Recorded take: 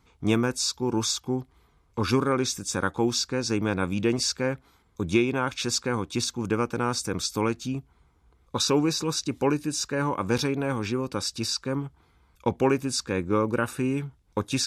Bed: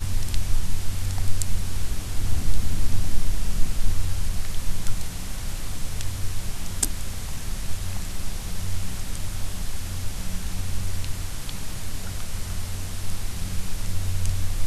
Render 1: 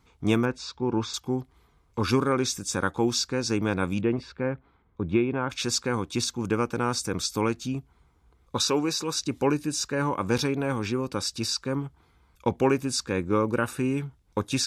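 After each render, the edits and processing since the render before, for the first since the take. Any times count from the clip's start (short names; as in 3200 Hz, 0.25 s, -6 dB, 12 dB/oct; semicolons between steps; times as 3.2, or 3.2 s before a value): 0.45–1.14 LPF 2800 Hz; 4.01–5.5 air absorption 500 m; 8.68–9.16 low shelf 190 Hz -11 dB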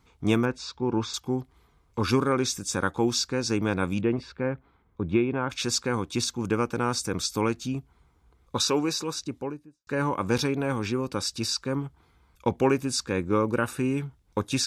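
8.87–9.87 studio fade out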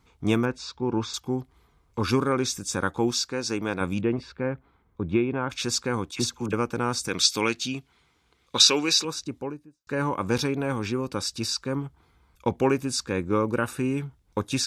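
3.11–3.81 low shelf 180 Hz -10 dB; 6.11–6.53 dispersion lows, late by 41 ms, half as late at 1100 Hz; 7.08–9.05 weighting filter D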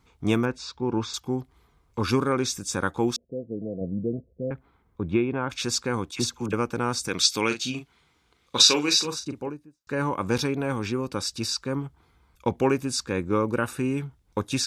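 3.16–4.51 rippled Chebyshev low-pass 690 Hz, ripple 6 dB; 7.47–9.49 doubler 40 ms -8 dB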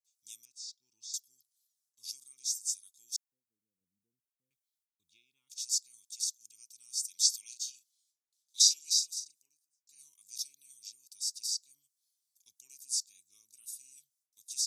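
gate with hold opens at -54 dBFS; inverse Chebyshev high-pass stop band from 1700 Hz, stop band 60 dB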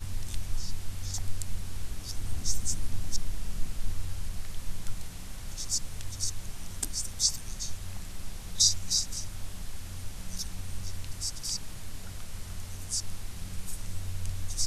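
add bed -9.5 dB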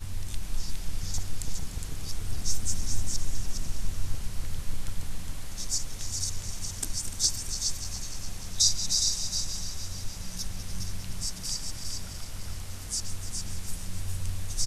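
regenerating reverse delay 0.148 s, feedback 79%, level -11 dB; on a send: echo 0.412 s -5 dB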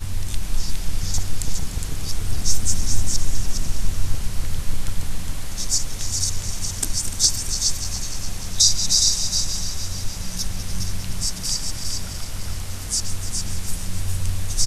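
gain +8.5 dB; limiter -3 dBFS, peak gain reduction 2 dB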